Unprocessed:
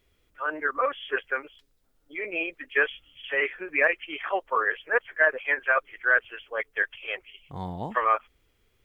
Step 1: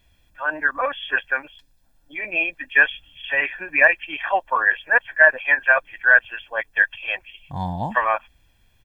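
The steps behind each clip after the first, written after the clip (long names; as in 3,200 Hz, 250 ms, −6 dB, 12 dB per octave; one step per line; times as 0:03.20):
comb filter 1.2 ms, depth 77%
level +4.5 dB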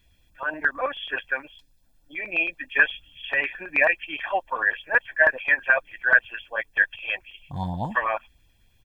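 auto-filter notch saw up 9.3 Hz 590–2,000 Hz
level −1.5 dB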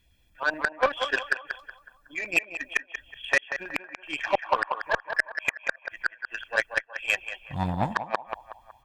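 gate with flip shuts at −14 dBFS, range −37 dB
feedback echo with a band-pass in the loop 185 ms, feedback 54%, band-pass 1,000 Hz, level −3.5 dB
harmonic generator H 7 −22 dB, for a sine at −11 dBFS
level +4.5 dB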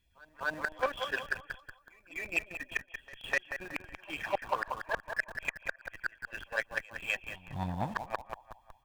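in parallel at −11 dB: comparator with hysteresis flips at −35.5 dBFS
on the sum: backwards echo 252 ms −22.5 dB
level −8.5 dB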